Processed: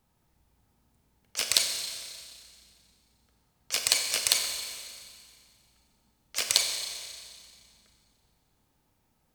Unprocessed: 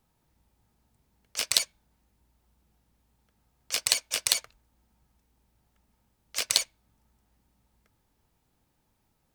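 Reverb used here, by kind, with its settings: Schroeder reverb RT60 2.1 s, combs from 30 ms, DRR 3.5 dB

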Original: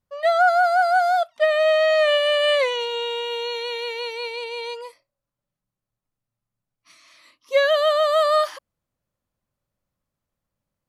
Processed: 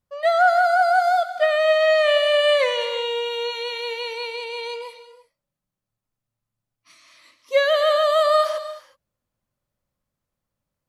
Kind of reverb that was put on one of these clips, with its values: gated-style reverb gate 390 ms flat, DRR 9.5 dB

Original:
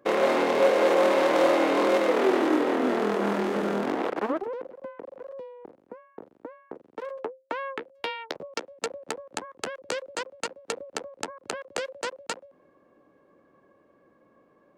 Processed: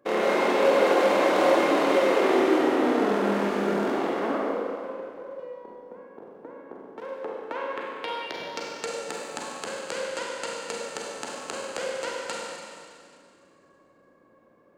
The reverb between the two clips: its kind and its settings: Schroeder reverb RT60 2.2 s, combs from 32 ms, DRR -3.5 dB; trim -3.5 dB

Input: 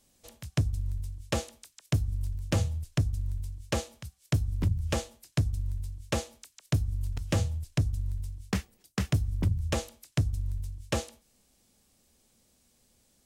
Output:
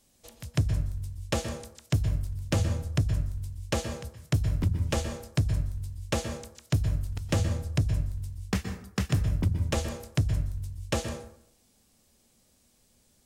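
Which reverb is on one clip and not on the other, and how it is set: plate-style reverb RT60 0.66 s, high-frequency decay 0.5×, pre-delay 110 ms, DRR 7.5 dB; trim +1 dB

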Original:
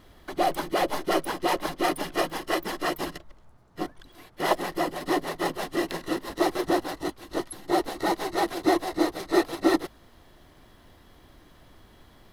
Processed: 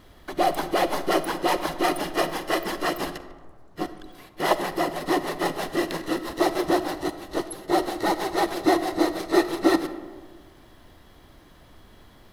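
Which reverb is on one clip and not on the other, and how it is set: algorithmic reverb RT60 1.6 s, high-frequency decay 0.4×, pre-delay 15 ms, DRR 11.5 dB; trim +2 dB

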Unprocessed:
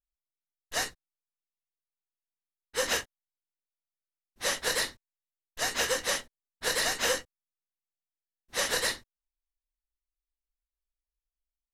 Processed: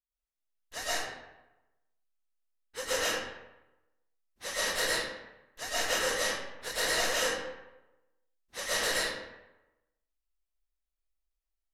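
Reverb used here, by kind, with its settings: algorithmic reverb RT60 1 s, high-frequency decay 0.65×, pre-delay 80 ms, DRR -9.5 dB; trim -9.5 dB

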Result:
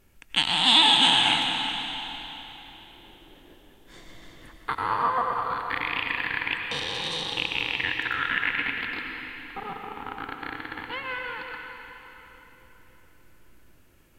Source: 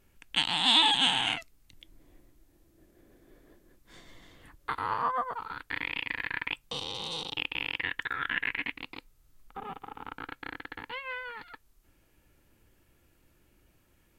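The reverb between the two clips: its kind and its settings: algorithmic reverb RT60 3.8 s, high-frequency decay 0.9×, pre-delay 60 ms, DRR 2 dB; trim +4 dB

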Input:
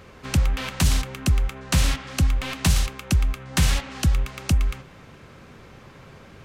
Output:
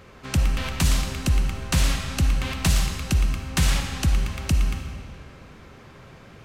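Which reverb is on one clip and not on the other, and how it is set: algorithmic reverb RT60 2 s, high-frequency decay 0.9×, pre-delay 15 ms, DRR 4.5 dB; trim -1.5 dB

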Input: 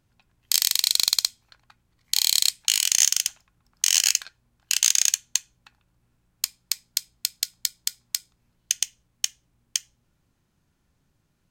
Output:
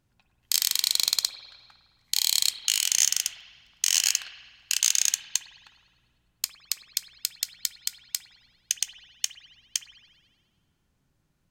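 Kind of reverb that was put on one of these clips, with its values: spring tank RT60 1.5 s, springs 52 ms, chirp 50 ms, DRR 8 dB; trim -3 dB

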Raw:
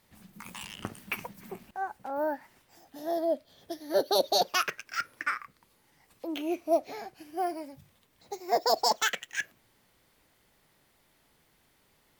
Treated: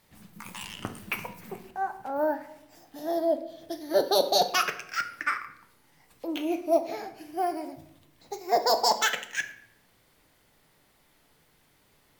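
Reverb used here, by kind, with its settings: simulated room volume 200 m³, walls mixed, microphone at 0.39 m; trim +2 dB

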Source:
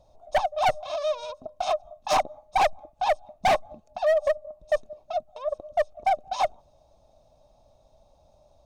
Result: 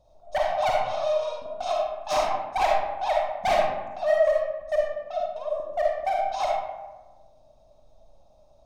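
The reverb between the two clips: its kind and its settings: algorithmic reverb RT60 1.2 s, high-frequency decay 0.5×, pre-delay 10 ms, DRR -2.5 dB; trim -4.5 dB

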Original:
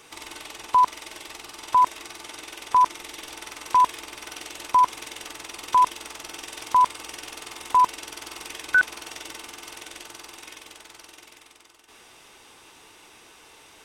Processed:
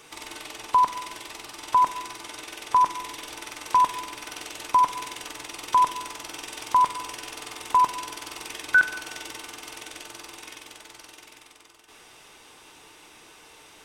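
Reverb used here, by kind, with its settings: simulated room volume 1100 m³, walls mixed, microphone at 0.44 m

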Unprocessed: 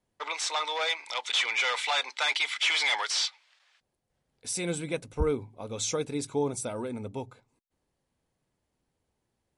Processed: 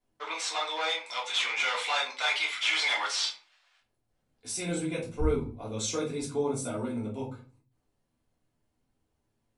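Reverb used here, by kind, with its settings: simulated room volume 200 m³, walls furnished, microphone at 3.2 m; trim -7 dB

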